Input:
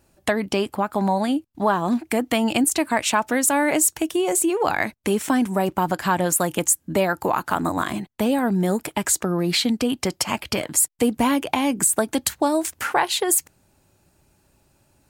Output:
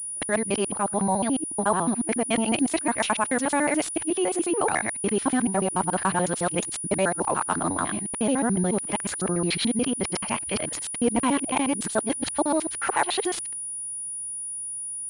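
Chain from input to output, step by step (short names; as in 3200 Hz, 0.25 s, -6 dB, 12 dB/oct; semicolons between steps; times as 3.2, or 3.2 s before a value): local time reversal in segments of 72 ms; pulse-width modulation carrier 9700 Hz; gain -3 dB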